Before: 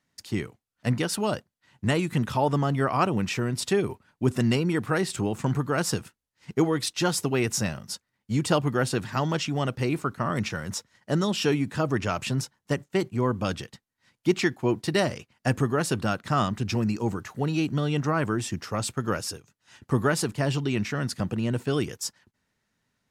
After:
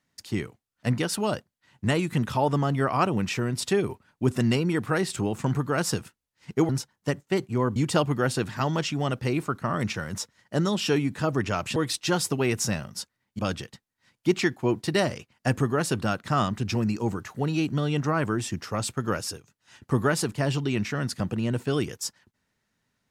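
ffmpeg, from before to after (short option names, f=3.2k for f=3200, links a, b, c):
-filter_complex "[0:a]asplit=5[a][b][c][d][e];[a]atrim=end=6.692[f];[b]atrim=start=12.318:end=13.392[g];[c]atrim=start=8.318:end=12.322[h];[d]atrim=start=6.688:end=8.322[i];[e]atrim=start=13.388[j];[f][g]acrossfade=d=0.004:c1=hsin:c2=hsin[k];[k][h]acrossfade=d=0.004:c1=hsin:c2=hsin[l];[l][i]acrossfade=d=0.004:c1=hsin:c2=hsin[m];[m][j]acrossfade=d=0.004:c1=hsin:c2=hsin"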